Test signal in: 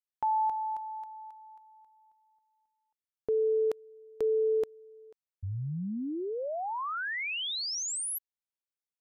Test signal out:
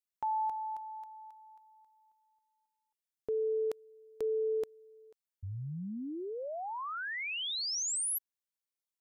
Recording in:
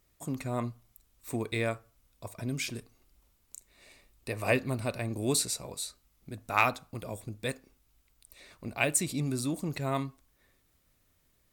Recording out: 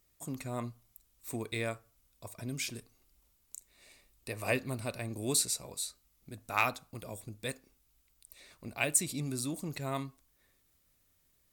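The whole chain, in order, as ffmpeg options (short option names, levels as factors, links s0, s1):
-af "highshelf=f=3900:g=6.5,volume=0.562"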